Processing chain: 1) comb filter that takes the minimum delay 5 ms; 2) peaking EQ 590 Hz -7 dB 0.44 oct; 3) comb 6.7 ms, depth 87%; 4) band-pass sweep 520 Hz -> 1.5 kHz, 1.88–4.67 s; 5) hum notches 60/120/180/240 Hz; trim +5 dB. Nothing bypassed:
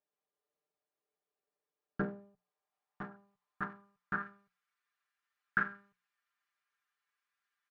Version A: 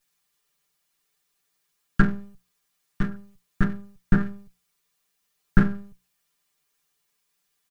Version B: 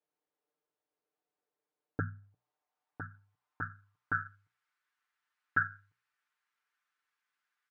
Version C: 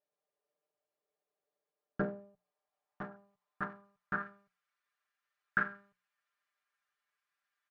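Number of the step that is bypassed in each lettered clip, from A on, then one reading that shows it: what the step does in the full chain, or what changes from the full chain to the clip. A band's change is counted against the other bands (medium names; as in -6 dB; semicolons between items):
4, 125 Hz band +14.5 dB; 1, 500 Hz band -7.5 dB; 2, 500 Hz band +3.0 dB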